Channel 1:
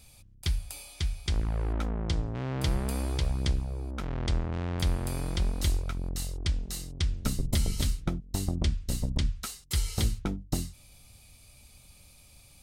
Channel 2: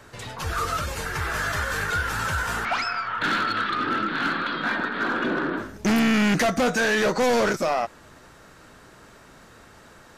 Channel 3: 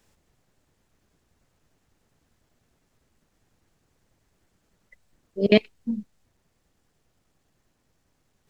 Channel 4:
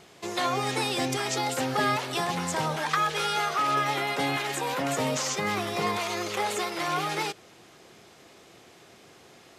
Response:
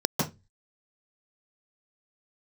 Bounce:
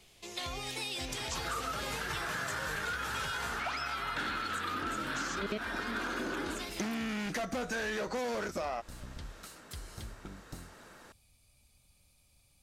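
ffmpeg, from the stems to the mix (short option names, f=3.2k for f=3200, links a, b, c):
-filter_complex "[0:a]acompressor=threshold=-31dB:ratio=2.5,volume=-12dB[a];[1:a]highpass=150,adelay=950,volume=-4.5dB[b];[2:a]volume=-8.5dB[c];[3:a]highshelf=f=2k:t=q:w=1.5:g=7,volume=-13.5dB[d];[a][b][c][d]amix=inputs=4:normalize=0,acompressor=threshold=-33dB:ratio=6"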